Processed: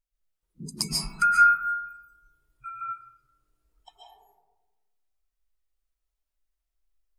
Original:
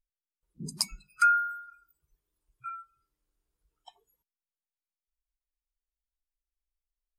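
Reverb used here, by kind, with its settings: algorithmic reverb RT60 1.2 s, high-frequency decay 0.3×, pre-delay 100 ms, DRR -5 dB

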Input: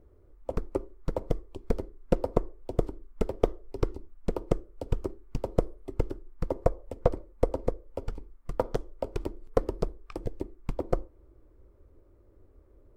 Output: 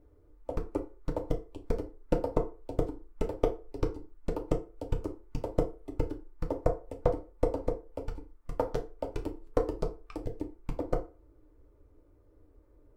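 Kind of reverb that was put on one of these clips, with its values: FDN reverb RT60 0.33 s, low-frequency decay 0.75×, high-frequency decay 0.7×, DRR 2 dB; trim -4 dB

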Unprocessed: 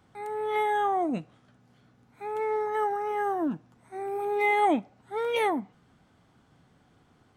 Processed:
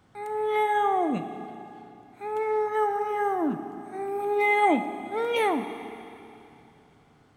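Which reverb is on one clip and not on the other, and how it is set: Schroeder reverb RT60 2.9 s, combs from 27 ms, DRR 8.5 dB; trim +1.5 dB

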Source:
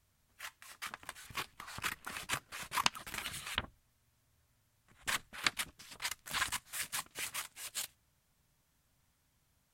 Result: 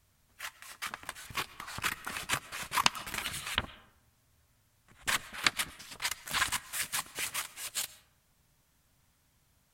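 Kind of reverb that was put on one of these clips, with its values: algorithmic reverb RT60 0.89 s, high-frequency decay 0.45×, pre-delay 75 ms, DRR 18 dB; trim +5 dB

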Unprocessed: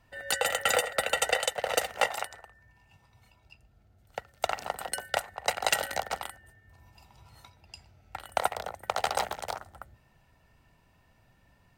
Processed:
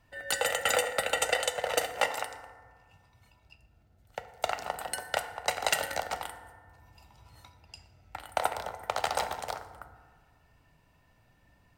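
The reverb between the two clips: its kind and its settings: FDN reverb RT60 1.6 s, low-frequency decay 1.05×, high-frequency decay 0.45×, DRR 8.5 dB; trim -1.5 dB

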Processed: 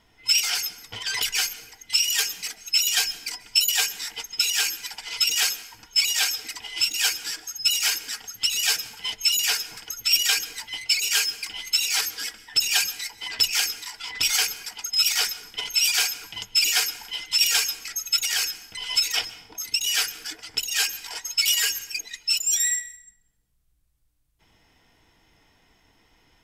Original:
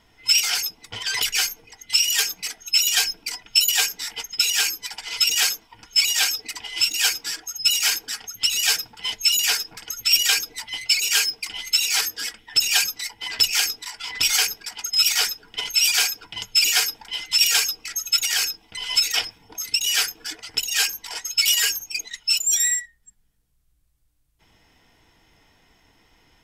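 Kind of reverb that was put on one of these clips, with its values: plate-style reverb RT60 0.82 s, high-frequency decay 0.7×, pre-delay 120 ms, DRR 16.5 dB; trim -2.5 dB

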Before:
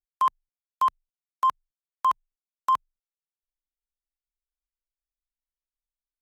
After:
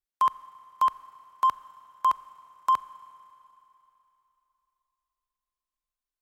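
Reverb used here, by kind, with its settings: Schroeder reverb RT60 3.2 s, combs from 30 ms, DRR 15.5 dB

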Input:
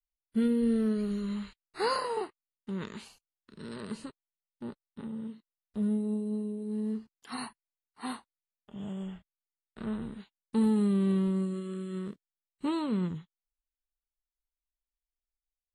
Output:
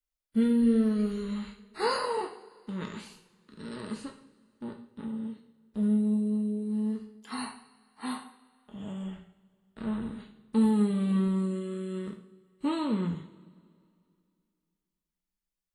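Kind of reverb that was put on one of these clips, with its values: two-slope reverb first 0.55 s, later 2.5 s, from -21 dB, DRR 2 dB

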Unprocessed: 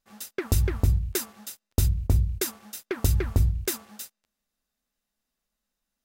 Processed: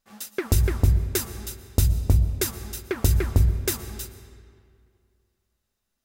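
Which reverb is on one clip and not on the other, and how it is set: algorithmic reverb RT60 2.3 s, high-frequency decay 0.7×, pre-delay 80 ms, DRR 12 dB; trim +2.5 dB

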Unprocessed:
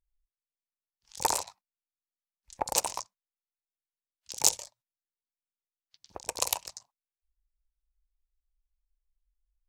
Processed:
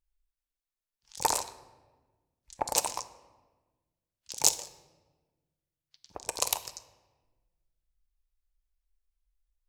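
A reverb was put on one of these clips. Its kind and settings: simulated room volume 1000 m³, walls mixed, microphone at 0.4 m

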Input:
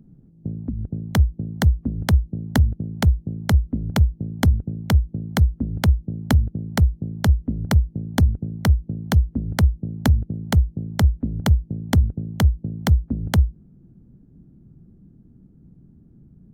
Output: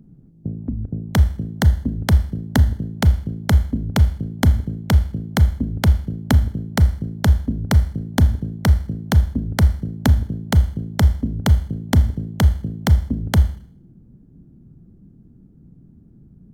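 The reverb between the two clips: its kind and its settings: Schroeder reverb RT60 0.55 s, combs from 26 ms, DRR 12.5 dB; trim +2 dB

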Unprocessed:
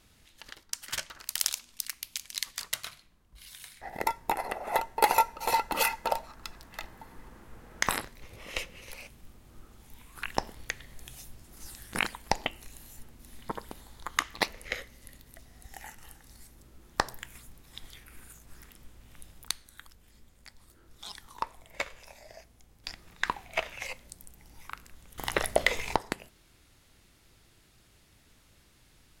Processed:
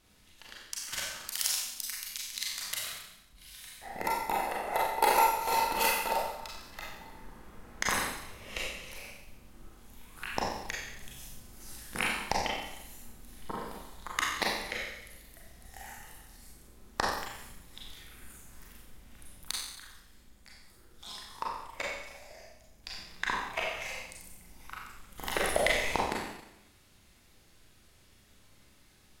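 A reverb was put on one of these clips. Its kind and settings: Schroeder reverb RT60 0.87 s, combs from 30 ms, DRR -4 dB; trim -5 dB

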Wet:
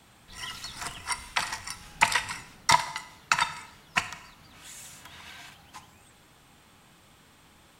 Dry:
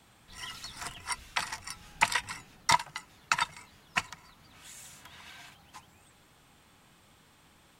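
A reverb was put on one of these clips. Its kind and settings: Schroeder reverb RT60 0.78 s, combs from 26 ms, DRR 11.5 dB; trim +3.5 dB

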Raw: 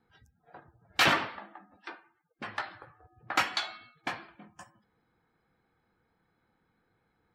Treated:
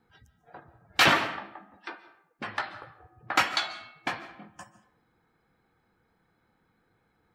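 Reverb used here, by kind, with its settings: algorithmic reverb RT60 0.67 s, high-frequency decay 0.65×, pre-delay 105 ms, DRR 15 dB; trim +3.5 dB

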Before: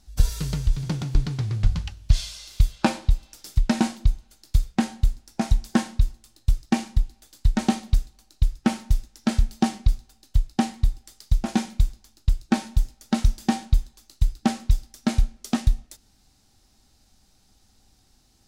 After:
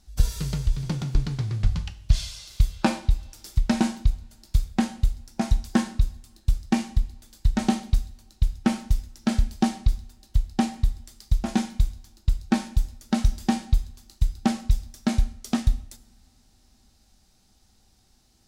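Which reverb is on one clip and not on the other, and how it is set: two-slope reverb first 0.57 s, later 4.8 s, from -28 dB, DRR 11.5 dB; trim -1.5 dB

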